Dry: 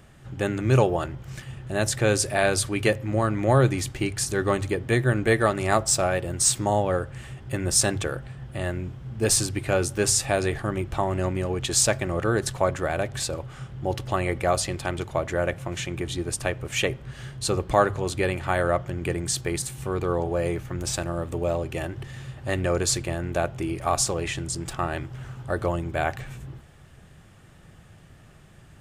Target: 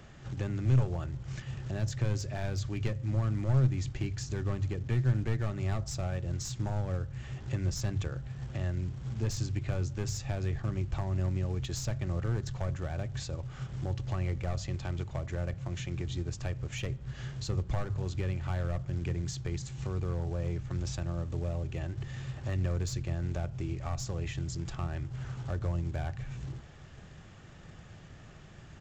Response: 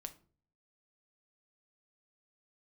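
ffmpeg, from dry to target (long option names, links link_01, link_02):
-filter_complex "[0:a]aresample=16000,acrusher=bits=5:mode=log:mix=0:aa=0.000001,aresample=44100,aeval=exprs='clip(val(0),-1,0.1)':channel_layout=same,acrossover=split=170[link_01][link_02];[link_02]acompressor=threshold=-47dB:ratio=2.5[link_03];[link_01][link_03]amix=inputs=2:normalize=0"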